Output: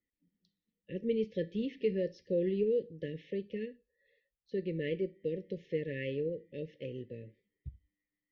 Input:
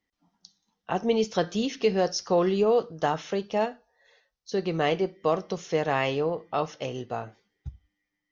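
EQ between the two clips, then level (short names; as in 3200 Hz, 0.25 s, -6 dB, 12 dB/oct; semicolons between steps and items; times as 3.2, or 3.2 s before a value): brick-wall FIR band-stop 580–1700 Hz; air absorption 460 m; -6.5 dB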